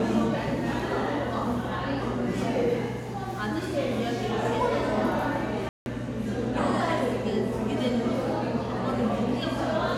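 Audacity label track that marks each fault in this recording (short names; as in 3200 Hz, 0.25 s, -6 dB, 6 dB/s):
5.690000	5.860000	gap 0.171 s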